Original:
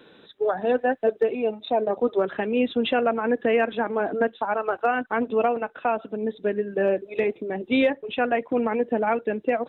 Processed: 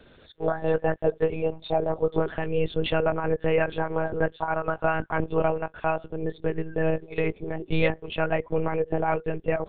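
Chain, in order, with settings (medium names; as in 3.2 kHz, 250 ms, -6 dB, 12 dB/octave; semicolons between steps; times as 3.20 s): monotone LPC vocoder at 8 kHz 160 Hz; trim -1.5 dB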